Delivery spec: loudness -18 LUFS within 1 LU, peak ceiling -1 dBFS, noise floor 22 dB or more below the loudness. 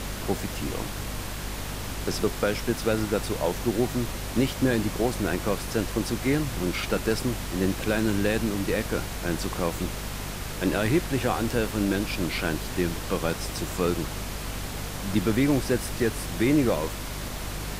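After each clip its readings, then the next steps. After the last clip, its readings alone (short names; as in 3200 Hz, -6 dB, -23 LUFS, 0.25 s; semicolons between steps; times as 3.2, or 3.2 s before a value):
hum 50 Hz; harmonics up to 250 Hz; hum level -35 dBFS; noise floor -35 dBFS; noise floor target -50 dBFS; loudness -27.5 LUFS; peak -11.0 dBFS; loudness target -18.0 LUFS
-> notches 50/100/150/200/250 Hz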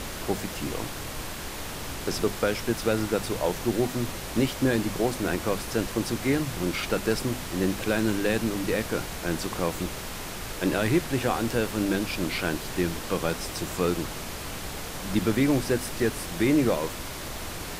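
hum none; noise floor -36 dBFS; noise floor target -50 dBFS
-> noise print and reduce 14 dB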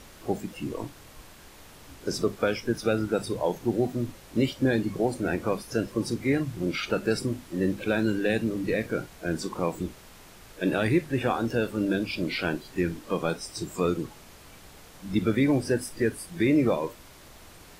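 noise floor -50 dBFS; loudness -28.0 LUFS; peak -11.5 dBFS; loudness target -18.0 LUFS
-> gain +10 dB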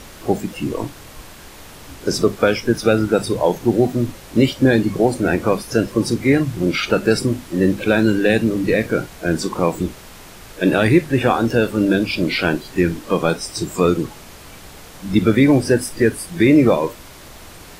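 loudness -18.0 LUFS; peak -1.5 dBFS; noise floor -40 dBFS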